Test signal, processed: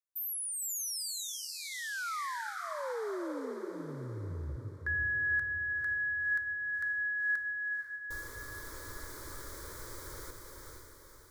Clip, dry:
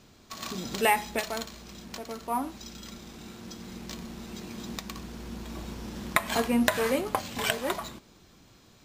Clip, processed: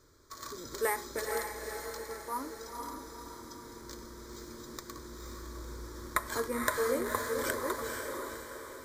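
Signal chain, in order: fixed phaser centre 740 Hz, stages 6; on a send: diffused feedback echo 0.492 s, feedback 49%, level -3.5 dB; on the sum: gain -3 dB

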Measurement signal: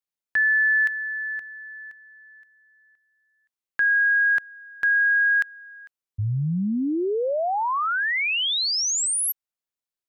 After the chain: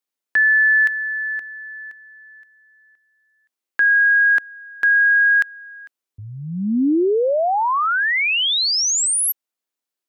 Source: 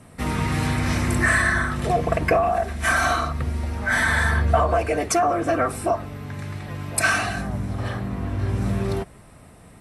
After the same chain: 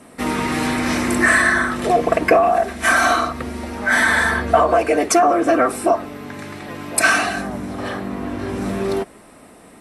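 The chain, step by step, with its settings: resonant low shelf 180 Hz -12 dB, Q 1.5; gain +5 dB

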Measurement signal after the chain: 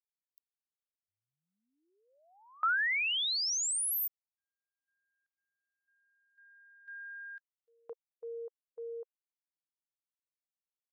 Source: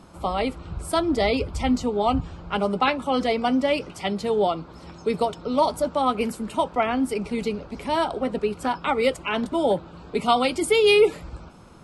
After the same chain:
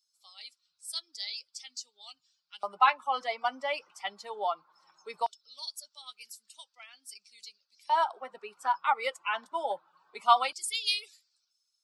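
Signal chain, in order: per-bin expansion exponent 1.5; LFO high-pass square 0.19 Hz 990–4500 Hz; gain -3.5 dB

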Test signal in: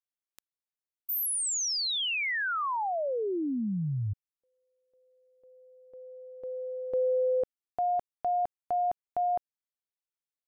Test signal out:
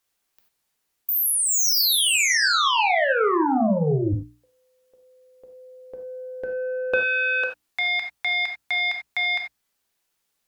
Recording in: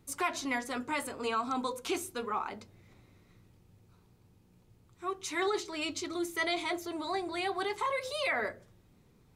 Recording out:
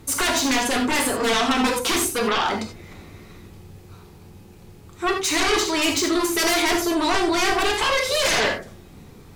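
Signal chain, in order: sine folder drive 14 dB, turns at -18.5 dBFS; notches 60/120/180/240/300 Hz; non-linear reverb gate 0.11 s flat, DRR 3 dB

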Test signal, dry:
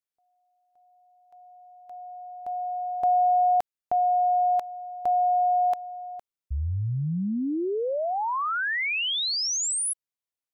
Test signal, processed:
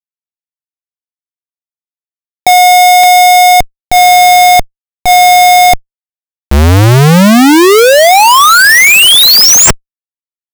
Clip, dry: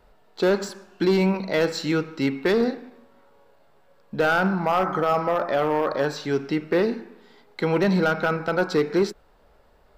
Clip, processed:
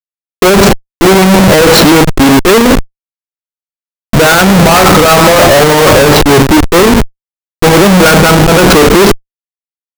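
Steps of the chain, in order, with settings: low-pass opened by the level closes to 310 Hz, open at -22 dBFS; Schmitt trigger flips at -33 dBFS; maximiser +25.5 dB; gain -1.5 dB

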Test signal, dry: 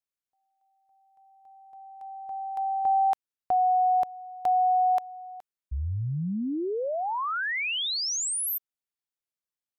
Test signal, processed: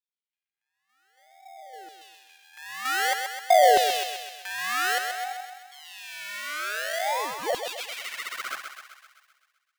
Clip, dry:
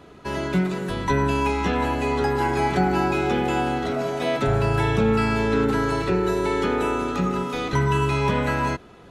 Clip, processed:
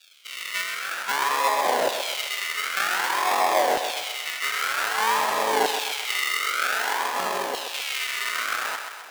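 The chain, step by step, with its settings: decimation with a swept rate 42×, swing 60% 0.52 Hz; LFO high-pass saw down 0.53 Hz 560–3500 Hz; thinning echo 0.129 s, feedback 60%, high-pass 440 Hz, level -6 dB

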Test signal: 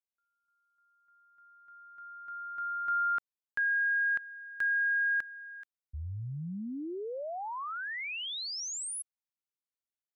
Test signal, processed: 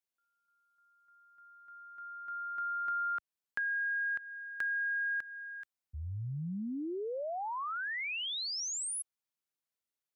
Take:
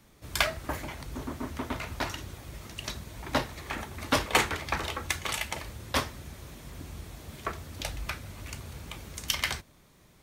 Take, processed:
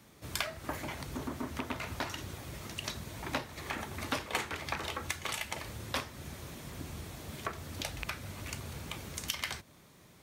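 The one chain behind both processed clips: rattling part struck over -30 dBFS, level -18 dBFS; HPF 81 Hz; compressor 3:1, threshold -36 dBFS; gain +1.5 dB

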